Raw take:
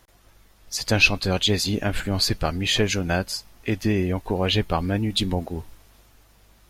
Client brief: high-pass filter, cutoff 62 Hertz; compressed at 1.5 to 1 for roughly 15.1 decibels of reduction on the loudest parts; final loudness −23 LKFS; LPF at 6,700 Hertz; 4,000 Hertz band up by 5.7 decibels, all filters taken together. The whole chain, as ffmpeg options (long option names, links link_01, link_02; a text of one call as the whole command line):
ffmpeg -i in.wav -af "highpass=62,lowpass=6700,equalizer=frequency=4000:width_type=o:gain=7.5,acompressor=threshold=-52dB:ratio=1.5,volume=10dB" out.wav